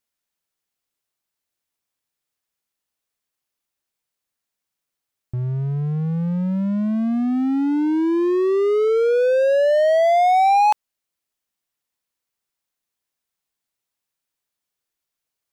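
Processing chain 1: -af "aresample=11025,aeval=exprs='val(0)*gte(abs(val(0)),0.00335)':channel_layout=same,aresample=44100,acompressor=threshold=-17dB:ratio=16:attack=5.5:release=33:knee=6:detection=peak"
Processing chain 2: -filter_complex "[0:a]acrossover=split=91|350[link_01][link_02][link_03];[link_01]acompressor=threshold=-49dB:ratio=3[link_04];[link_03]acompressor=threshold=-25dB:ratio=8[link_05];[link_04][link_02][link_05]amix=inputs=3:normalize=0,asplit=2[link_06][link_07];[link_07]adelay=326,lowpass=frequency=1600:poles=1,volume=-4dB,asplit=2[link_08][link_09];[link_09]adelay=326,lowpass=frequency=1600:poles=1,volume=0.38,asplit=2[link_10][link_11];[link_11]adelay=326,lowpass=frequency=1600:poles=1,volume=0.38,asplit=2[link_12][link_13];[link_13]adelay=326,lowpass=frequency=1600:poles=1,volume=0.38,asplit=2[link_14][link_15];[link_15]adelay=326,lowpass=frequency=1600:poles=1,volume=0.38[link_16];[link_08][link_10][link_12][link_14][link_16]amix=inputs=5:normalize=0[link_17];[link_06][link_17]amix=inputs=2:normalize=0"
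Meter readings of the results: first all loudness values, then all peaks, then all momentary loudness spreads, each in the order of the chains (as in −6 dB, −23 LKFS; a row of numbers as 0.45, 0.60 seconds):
−21.5, −21.0 LKFS; −14.5, −10.5 dBFS; 5, 10 LU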